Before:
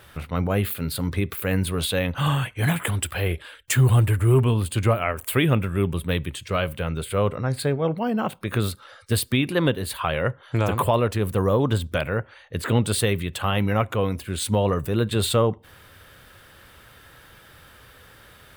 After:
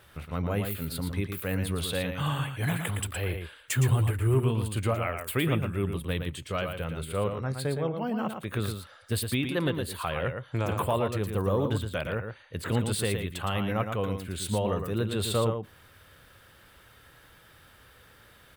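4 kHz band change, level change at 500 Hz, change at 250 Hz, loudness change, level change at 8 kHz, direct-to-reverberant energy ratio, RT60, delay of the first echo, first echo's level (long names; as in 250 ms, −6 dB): −6.0 dB, −6.0 dB, −6.0 dB, −6.5 dB, −6.0 dB, no reverb audible, no reverb audible, 114 ms, −6.5 dB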